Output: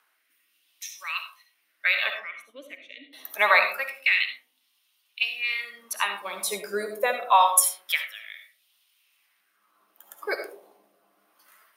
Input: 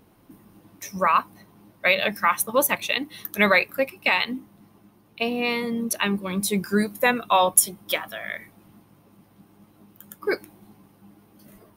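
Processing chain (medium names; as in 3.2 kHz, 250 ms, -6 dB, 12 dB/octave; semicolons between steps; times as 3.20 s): high-pass 210 Hz 6 dB/octave; LFO high-pass sine 0.26 Hz 580–3300 Hz; 2.10–3.13 s: vowel filter i; algorithmic reverb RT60 0.52 s, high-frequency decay 0.3×, pre-delay 30 ms, DRR 6 dB; rotary cabinet horn 0.75 Hz; trim -1.5 dB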